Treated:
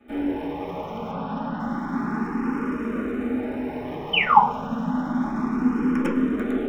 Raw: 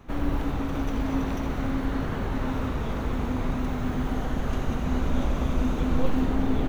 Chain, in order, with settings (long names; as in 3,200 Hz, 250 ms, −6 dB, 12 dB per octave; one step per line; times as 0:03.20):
in parallel at −11.5 dB: log-companded quantiser 2 bits
0:01.11–0:01.60: on the sum: Butterworth low-pass 5,200 Hz 72 dB per octave
0:02.27–0:03.85: notch filter 3,300 Hz, Q 5.1
0:04.13–0:04.39: sound drawn into the spectrogram fall 750–3,200 Hz −15 dBFS
convolution reverb RT60 0.45 s, pre-delay 3 ms, DRR −8 dB
frequency shifter mixed with the dry sound +0.3 Hz
level −13.5 dB